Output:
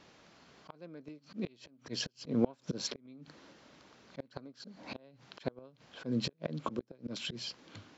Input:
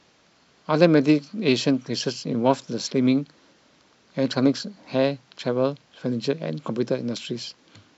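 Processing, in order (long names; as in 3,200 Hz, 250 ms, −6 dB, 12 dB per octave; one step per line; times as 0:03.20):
gate with flip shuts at −13 dBFS, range −32 dB
volume swells 199 ms
high-shelf EQ 3,900 Hz −5.5 dB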